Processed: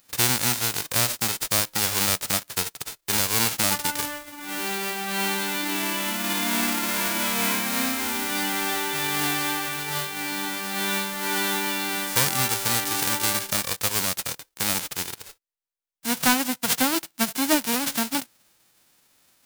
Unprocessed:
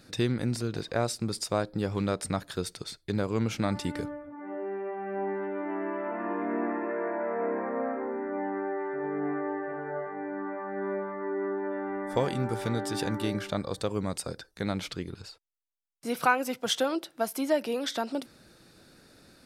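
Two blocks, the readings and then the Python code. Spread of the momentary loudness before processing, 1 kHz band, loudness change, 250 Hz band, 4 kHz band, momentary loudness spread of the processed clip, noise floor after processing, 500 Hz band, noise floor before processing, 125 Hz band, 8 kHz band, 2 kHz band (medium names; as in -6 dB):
8 LU, +5.0 dB, +8.0 dB, +2.0 dB, +13.0 dB, 7 LU, -65 dBFS, -4.0 dB, -61 dBFS, -0.5 dB, +17.5 dB, +10.5 dB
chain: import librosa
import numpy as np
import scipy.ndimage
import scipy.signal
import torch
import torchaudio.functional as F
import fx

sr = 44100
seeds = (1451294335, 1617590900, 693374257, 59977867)

y = fx.envelope_flatten(x, sr, power=0.1)
y = fx.leveller(y, sr, passes=2)
y = F.gain(torch.from_numpy(y), -1.5).numpy()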